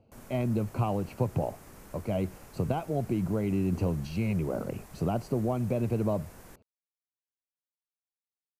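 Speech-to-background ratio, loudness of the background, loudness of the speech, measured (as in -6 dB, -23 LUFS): 20.0 dB, -51.0 LUFS, -31.0 LUFS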